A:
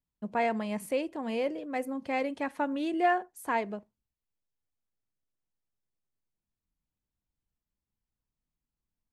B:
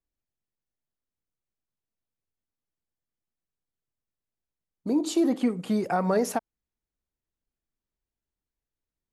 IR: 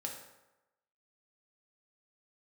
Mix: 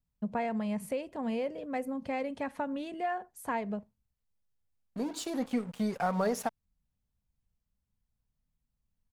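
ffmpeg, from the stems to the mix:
-filter_complex "[0:a]lowshelf=f=470:g=10.5,acompressor=threshold=-26dB:ratio=6,volume=-1.5dB[a];[1:a]aeval=exprs='sgn(val(0))*max(abs(val(0))-0.00668,0)':c=same,adelay=100,volume=-3dB[b];[a][b]amix=inputs=2:normalize=0,equalizer=f=330:t=o:w=0.43:g=-13"

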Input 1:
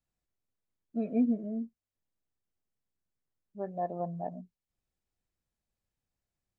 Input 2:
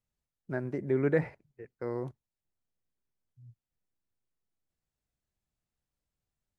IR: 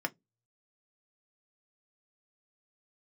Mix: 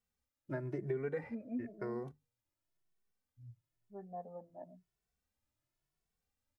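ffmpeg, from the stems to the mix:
-filter_complex "[0:a]lowpass=2.1k,adelay=350,volume=-9dB[a];[1:a]acompressor=threshold=-37dB:ratio=4,volume=2dB,asplit=2[b][c];[c]volume=-14.5dB[d];[2:a]atrim=start_sample=2205[e];[d][e]afir=irnorm=-1:irlink=0[f];[a][b][f]amix=inputs=3:normalize=0,bandreject=f=50:t=h:w=6,bandreject=f=100:t=h:w=6,bandreject=f=150:t=h:w=6,asplit=2[g][h];[h]adelay=2.2,afreqshift=0.98[i];[g][i]amix=inputs=2:normalize=1"

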